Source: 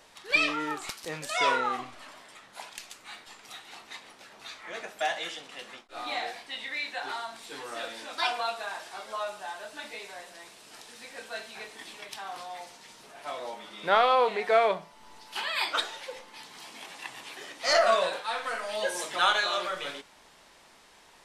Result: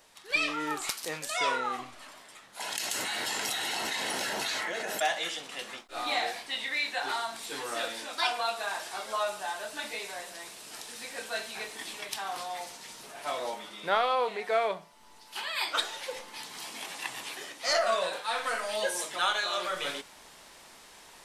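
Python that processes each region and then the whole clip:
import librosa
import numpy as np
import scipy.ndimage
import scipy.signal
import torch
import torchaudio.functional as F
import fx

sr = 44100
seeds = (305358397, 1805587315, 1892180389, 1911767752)

y = fx.chain(x, sr, fx.low_shelf(hz=190.0, db=-8.5),
    fx.quant_float(bits=8), at=(0.82, 1.27))
y = fx.chain(y, sr, fx.notch_comb(f0_hz=1200.0),
    fx.env_flatten(amount_pct=100), at=(2.6, 5.0))
y = fx.high_shelf(y, sr, hz=7300.0, db=8.5)
y = fx.rider(y, sr, range_db=4, speed_s=0.5)
y = F.gain(torch.from_numpy(y), -1.0).numpy()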